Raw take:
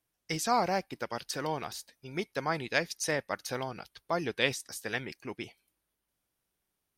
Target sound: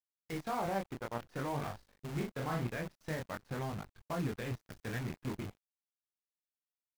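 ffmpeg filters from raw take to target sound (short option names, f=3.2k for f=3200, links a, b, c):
-filter_complex "[0:a]agate=range=-33dB:threshold=-59dB:ratio=3:detection=peak,asubboost=boost=5:cutoff=200,asplit=2[a][b];[b]acompressor=threshold=-39dB:ratio=8,volume=-2.5dB[c];[a][c]amix=inputs=2:normalize=0,alimiter=limit=-22.5dB:level=0:latency=1:release=12,flanger=delay=19.5:depth=6.6:speed=0.52,acrossover=split=1600[d][e];[e]asoftclip=type=tanh:threshold=-34.5dB[f];[d][f]amix=inputs=2:normalize=0,adynamicsmooth=sensitivity=6:basefreq=1k,acrusher=bits=8:dc=4:mix=0:aa=0.000001,asplit=3[g][h][i];[g]afade=t=out:st=1.58:d=0.02[j];[h]asplit=2[k][l];[l]adelay=41,volume=-4dB[m];[k][m]amix=inputs=2:normalize=0,afade=t=in:st=1.58:d=0.02,afade=t=out:st=2.66:d=0.02[n];[i]afade=t=in:st=2.66:d=0.02[o];[j][n][o]amix=inputs=3:normalize=0,adynamicequalizer=threshold=0.00224:dfrequency=2400:dqfactor=0.7:tfrequency=2400:tqfactor=0.7:attack=5:release=100:ratio=0.375:range=2:mode=cutabove:tftype=highshelf,volume=-1dB"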